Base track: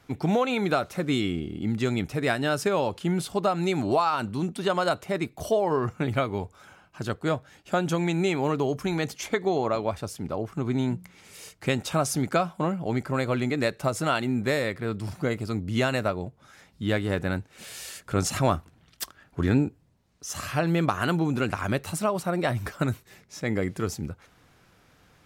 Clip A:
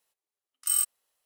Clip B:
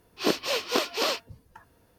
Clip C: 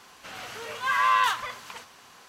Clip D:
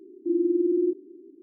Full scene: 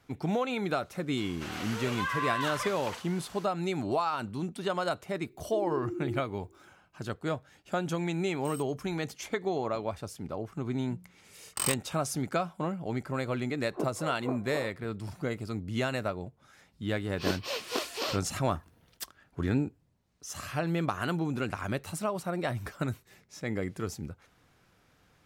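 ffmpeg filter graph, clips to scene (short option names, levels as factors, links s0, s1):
-filter_complex "[1:a]asplit=2[s0][s1];[2:a]asplit=2[s2][s3];[0:a]volume=0.501[s4];[3:a]acompressor=threshold=0.0398:ratio=5:attack=0.95:release=172:knee=1:detection=peak[s5];[4:a]aemphasis=mode=production:type=bsi[s6];[s0]asplit=2[s7][s8];[s8]highpass=f=720:p=1,volume=2.24,asoftclip=type=tanh:threshold=0.237[s9];[s7][s9]amix=inputs=2:normalize=0,lowpass=f=4500:p=1,volume=0.501[s10];[s1]adynamicsmooth=sensitivity=6:basefreq=740[s11];[s2]lowpass=f=1000:w=0.5412,lowpass=f=1000:w=1.3066[s12];[s5]atrim=end=2.28,asetpts=PTS-STARTPTS,afade=t=in:d=0.004:c=hsin,afade=t=out:st=2.276:d=0.004:c=hsin,adelay=1170[s13];[s6]atrim=end=1.42,asetpts=PTS-STARTPTS,volume=0.299,afade=t=in:d=0.004:c=hsin,afade=t=out:st=1.416:d=0.004:c=hsin,adelay=5270[s14];[s10]atrim=end=1.25,asetpts=PTS-STARTPTS,volume=0.126,afade=t=in:d=0.004:c=hsin,afade=t=out:st=1.246:d=0.004:c=hsin,adelay=343098S[s15];[s11]atrim=end=1.25,asetpts=PTS-STARTPTS,afade=t=in:d=0.004:c=hsin,afade=t=out:st=1.246:d=0.004:c=hsin,adelay=480690S[s16];[s12]atrim=end=1.98,asetpts=PTS-STARTPTS,volume=0.398,afade=t=in:d=0.004:c=hsin,afade=t=out:st=1.976:d=0.004:c=hsin,adelay=13530[s17];[s3]atrim=end=1.98,asetpts=PTS-STARTPTS,volume=0.447,afade=t=in:d=0.004:c=hsin,afade=t=out:st=1.976:d=0.004:c=hsin,adelay=749700S[s18];[s4][s13][s14][s15][s16][s17][s18]amix=inputs=7:normalize=0"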